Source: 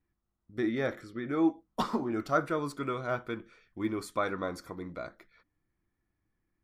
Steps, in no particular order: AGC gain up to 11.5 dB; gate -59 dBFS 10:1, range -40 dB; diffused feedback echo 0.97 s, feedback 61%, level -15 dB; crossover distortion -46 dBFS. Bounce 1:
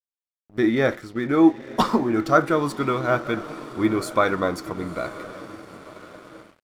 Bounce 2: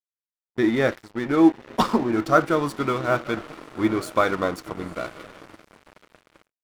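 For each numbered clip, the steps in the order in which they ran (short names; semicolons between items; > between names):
diffused feedback echo > AGC > crossover distortion > gate; diffused feedback echo > crossover distortion > AGC > gate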